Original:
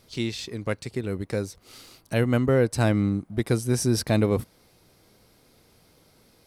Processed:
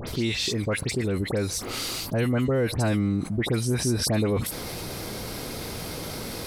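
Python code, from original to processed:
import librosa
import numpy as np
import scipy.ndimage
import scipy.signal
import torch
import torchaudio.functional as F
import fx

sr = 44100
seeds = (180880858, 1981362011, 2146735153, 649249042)

y = fx.dispersion(x, sr, late='highs', ms=75.0, hz=2300.0)
y = fx.env_flatten(y, sr, amount_pct=70)
y = F.gain(torch.from_numpy(y), -4.0).numpy()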